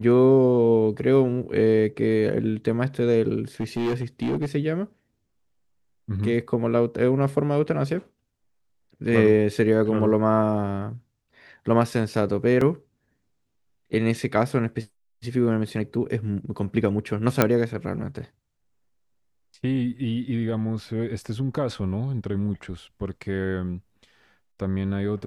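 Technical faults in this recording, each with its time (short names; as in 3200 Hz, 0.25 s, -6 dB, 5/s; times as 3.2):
3.6–4.46 clipped -21 dBFS
12.61 gap 3.9 ms
17.42 pop -3 dBFS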